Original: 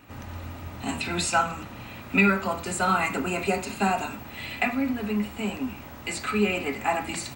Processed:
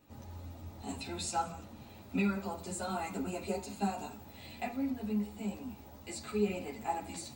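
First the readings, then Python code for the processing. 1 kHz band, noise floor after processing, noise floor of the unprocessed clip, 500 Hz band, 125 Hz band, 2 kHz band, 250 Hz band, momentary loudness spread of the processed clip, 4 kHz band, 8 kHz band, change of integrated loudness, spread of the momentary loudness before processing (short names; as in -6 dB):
-11.5 dB, -53 dBFS, -42 dBFS, -9.0 dB, -8.5 dB, -18.5 dB, -8.0 dB, 14 LU, -12.0 dB, -9.5 dB, -11.0 dB, 15 LU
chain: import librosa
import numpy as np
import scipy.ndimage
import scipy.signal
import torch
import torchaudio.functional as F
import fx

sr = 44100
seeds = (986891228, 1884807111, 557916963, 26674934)

y = fx.band_shelf(x, sr, hz=1800.0, db=-9.0, octaves=1.7)
y = y + 10.0 ** (-21.0 / 20.0) * np.pad(y, (int(177 * sr / 1000.0), 0))[:len(y)]
y = fx.ensemble(y, sr)
y = F.gain(torch.from_numpy(y), -6.5).numpy()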